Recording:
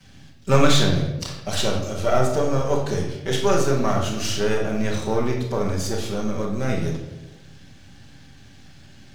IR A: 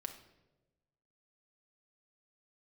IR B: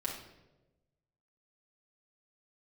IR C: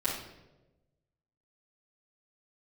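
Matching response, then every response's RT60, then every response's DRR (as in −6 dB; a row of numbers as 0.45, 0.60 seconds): C; non-exponential decay, non-exponential decay, non-exponential decay; 4.0, −4.0, −10.0 decibels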